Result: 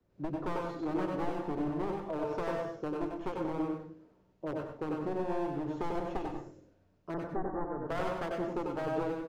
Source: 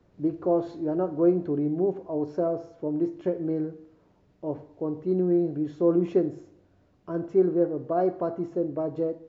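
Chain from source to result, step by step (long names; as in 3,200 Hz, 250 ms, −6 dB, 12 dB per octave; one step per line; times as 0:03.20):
wavefolder on the positive side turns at −26 dBFS
0:07.14–0:07.78: Butterworth low-pass 1,900 Hz 96 dB per octave
downward compressor 6 to 1, threshold −33 dBFS, peak gain reduction 15 dB
single-tap delay 95 ms −4 dB
convolution reverb RT60 0.30 s, pre-delay 88 ms, DRR 3 dB
multiband upward and downward expander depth 40%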